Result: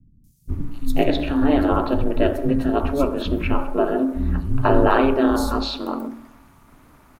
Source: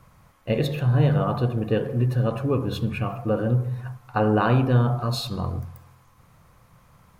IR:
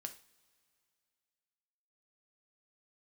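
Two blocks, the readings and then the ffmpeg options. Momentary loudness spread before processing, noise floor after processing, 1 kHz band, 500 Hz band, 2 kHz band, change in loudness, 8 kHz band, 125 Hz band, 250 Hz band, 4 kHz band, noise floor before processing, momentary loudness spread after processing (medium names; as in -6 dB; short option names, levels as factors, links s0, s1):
11 LU, -53 dBFS, +5.5 dB, +5.0 dB, +4.5 dB, +2.5 dB, no reading, -6.5 dB, +6.0 dB, +3.5 dB, -57 dBFS, 12 LU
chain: -filter_complex "[0:a]aeval=exprs='val(0)*sin(2*PI*140*n/s)':c=same,acrossover=split=200|5300[s0][s1][s2];[s2]adelay=240[s3];[s1]adelay=490[s4];[s0][s4][s3]amix=inputs=3:normalize=0,volume=2.51"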